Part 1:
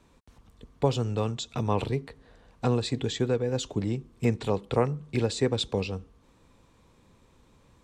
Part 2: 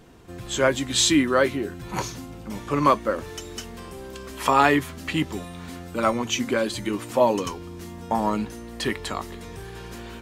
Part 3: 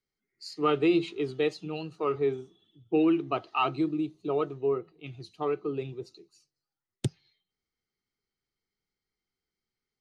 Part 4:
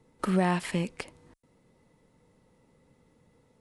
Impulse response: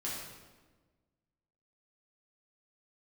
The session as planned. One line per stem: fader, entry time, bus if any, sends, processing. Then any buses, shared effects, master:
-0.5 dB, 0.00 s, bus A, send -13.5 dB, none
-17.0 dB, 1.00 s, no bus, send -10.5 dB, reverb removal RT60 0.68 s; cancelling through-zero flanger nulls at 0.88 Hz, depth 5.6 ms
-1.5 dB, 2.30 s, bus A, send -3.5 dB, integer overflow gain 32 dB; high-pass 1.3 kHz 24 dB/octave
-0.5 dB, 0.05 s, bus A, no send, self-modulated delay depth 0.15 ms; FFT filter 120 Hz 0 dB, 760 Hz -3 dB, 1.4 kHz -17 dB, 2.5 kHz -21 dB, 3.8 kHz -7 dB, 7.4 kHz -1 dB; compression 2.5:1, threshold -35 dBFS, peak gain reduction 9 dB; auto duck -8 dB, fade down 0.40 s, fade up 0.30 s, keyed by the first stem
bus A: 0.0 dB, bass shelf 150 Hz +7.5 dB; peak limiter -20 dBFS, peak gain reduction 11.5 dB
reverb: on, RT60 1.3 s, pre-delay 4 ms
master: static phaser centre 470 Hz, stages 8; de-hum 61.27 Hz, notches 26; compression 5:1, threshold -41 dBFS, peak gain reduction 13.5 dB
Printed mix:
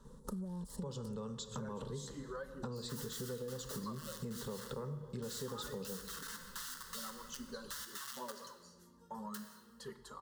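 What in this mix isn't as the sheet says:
stem 4 -0.5 dB -> +10.0 dB; master: missing de-hum 61.27 Hz, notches 26

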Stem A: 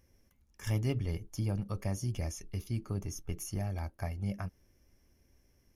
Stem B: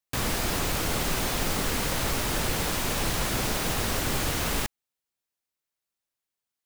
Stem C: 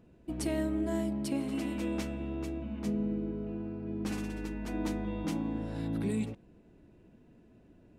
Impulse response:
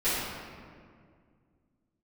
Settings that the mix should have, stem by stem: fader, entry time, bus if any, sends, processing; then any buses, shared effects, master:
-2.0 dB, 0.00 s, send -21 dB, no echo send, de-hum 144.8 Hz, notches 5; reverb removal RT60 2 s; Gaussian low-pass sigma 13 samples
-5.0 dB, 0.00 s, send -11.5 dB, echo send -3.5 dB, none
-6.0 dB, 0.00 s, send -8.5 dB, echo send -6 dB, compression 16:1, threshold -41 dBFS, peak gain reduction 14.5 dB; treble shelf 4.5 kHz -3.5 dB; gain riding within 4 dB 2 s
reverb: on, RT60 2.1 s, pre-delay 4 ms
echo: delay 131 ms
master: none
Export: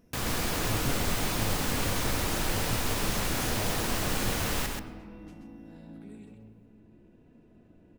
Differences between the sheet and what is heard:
stem A: missing Gaussian low-pass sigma 13 samples; reverb return -7.0 dB

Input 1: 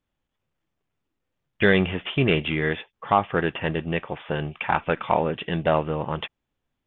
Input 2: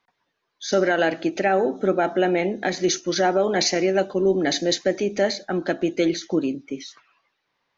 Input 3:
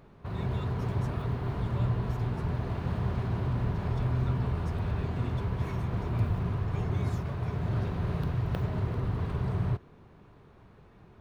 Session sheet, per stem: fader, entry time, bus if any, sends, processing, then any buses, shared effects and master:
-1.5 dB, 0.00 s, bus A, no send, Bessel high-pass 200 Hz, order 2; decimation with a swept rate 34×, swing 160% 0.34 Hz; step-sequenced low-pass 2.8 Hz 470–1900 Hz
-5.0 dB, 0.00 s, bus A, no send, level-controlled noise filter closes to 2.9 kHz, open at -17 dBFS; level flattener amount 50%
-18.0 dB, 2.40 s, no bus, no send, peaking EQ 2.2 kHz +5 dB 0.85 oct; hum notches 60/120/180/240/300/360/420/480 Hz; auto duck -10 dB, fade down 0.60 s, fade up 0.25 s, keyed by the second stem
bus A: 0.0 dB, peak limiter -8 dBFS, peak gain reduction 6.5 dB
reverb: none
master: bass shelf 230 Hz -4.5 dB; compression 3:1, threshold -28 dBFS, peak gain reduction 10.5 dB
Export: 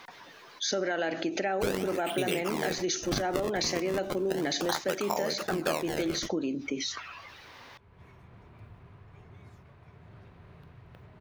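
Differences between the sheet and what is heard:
stem 1: missing step-sequenced low-pass 2.8 Hz 470–1900 Hz; stem 2: missing level-controlled noise filter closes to 2.9 kHz, open at -17 dBFS

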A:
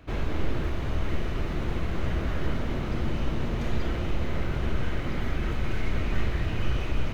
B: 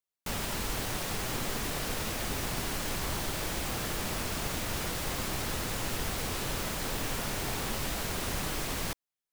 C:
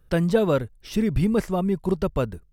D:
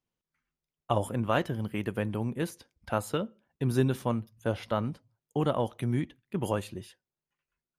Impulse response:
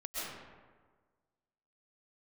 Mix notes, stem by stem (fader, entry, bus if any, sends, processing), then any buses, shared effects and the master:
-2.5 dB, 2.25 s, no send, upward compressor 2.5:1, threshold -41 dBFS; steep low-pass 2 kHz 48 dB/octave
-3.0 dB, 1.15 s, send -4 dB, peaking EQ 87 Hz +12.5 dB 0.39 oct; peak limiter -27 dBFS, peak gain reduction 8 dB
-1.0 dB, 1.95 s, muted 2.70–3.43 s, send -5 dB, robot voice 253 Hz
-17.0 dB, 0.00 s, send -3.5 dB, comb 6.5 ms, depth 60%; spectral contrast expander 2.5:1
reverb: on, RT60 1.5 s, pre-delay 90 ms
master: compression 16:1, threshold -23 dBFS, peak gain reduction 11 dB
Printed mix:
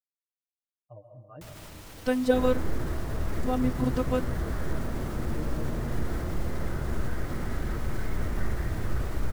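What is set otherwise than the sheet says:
stem B -3.0 dB -> -13.0 dB; stem C: send off; master: missing compression 16:1, threshold -23 dBFS, peak gain reduction 11 dB

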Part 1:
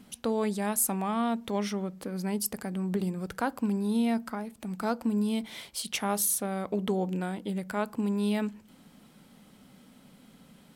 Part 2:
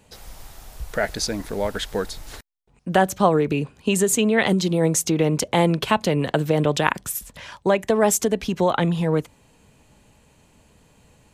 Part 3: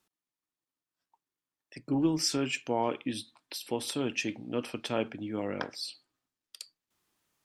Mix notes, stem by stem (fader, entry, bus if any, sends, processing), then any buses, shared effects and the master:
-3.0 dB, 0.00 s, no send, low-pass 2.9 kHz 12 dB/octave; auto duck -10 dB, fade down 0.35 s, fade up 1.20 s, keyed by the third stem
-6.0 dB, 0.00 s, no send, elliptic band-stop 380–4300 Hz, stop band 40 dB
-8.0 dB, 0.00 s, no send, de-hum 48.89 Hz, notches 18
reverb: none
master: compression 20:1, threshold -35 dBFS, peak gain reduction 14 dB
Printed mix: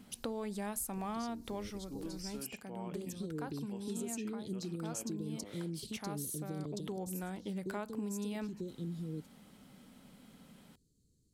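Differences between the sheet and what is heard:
stem 1: missing low-pass 2.9 kHz 12 dB/octave; stem 2 -6.0 dB -> -16.5 dB; stem 3 -8.0 dB -> -17.0 dB

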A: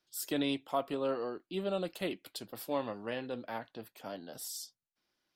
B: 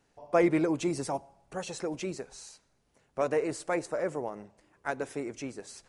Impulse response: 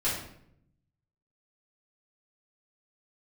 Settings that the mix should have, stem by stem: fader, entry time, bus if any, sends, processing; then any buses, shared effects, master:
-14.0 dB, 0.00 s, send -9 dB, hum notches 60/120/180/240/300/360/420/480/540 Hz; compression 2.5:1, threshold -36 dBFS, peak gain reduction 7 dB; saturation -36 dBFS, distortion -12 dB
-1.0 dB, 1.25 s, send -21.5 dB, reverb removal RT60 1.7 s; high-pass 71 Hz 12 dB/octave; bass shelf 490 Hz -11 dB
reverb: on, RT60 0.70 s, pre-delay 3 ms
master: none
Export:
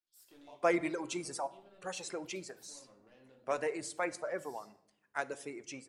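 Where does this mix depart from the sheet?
stem A -14.0 dB -> -22.0 dB; stem B: entry 1.25 s -> 0.30 s

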